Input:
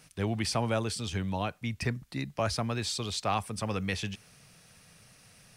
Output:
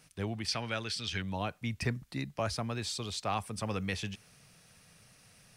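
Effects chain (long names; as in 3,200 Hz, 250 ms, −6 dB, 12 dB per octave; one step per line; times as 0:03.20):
0:00.48–0:01.22: flat-topped bell 2,800 Hz +10.5 dB 2.3 octaves
speech leveller within 4 dB 0.5 s
level −5 dB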